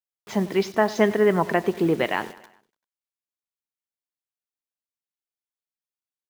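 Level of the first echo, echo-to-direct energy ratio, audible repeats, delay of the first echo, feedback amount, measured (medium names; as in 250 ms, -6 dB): -18.0 dB, -16.5 dB, 4, 97 ms, 53%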